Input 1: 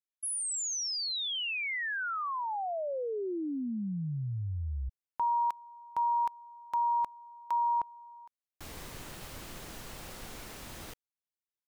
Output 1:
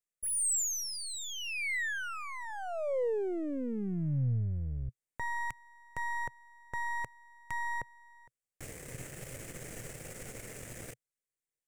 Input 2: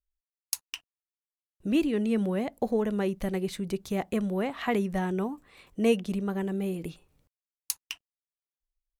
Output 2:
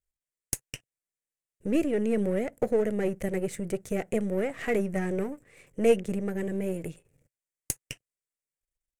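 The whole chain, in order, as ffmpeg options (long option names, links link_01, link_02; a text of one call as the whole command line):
ffmpeg -i in.wav -af "aeval=exprs='if(lt(val(0),0),0.251*val(0),val(0))':channel_layout=same,equalizer=frequency=125:width_type=o:width=1:gain=11,equalizer=frequency=500:width_type=o:width=1:gain=11,equalizer=frequency=1000:width_type=o:width=1:gain=-9,equalizer=frequency=2000:width_type=o:width=1:gain=10,equalizer=frequency=4000:width_type=o:width=1:gain=-10,equalizer=frequency=8000:width_type=o:width=1:gain=12,volume=-2dB" out.wav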